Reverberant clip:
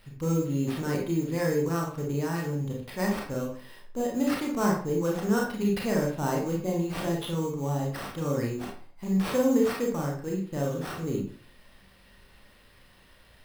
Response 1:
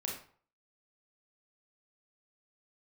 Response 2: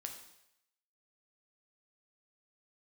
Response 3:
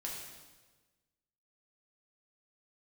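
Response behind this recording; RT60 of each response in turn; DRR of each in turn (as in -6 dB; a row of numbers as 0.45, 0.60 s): 1; 0.50, 0.80, 1.3 s; -2.0, 3.0, -3.5 dB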